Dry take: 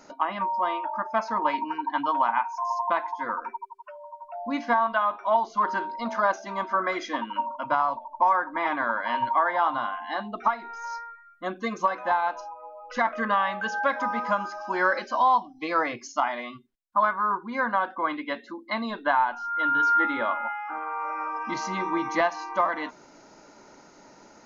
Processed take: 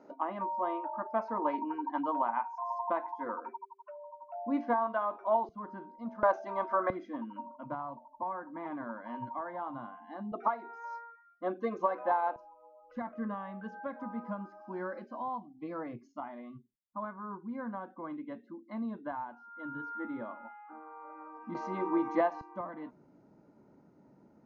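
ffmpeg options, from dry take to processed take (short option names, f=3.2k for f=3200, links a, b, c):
-af "asetnsamples=n=441:p=0,asendcmd='5.49 bandpass f 110;6.23 bandpass f 570;6.9 bandpass f 160;10.32 bandpass f 450;12.36 bandpass f 140;21.55 bandpass f 400;22.41 bandpass f 140',bandpass=f=380:t=q:w=1.1:csg=0"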